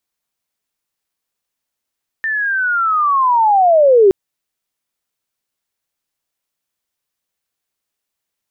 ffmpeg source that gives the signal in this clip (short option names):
-f lavfi -i "aevalsrc='pow(10,(-16+11*t/1.87)/20)*sin(2*PI*(1800*t-1430*t*t/(2*1.87)))':d=1.87:s=44100"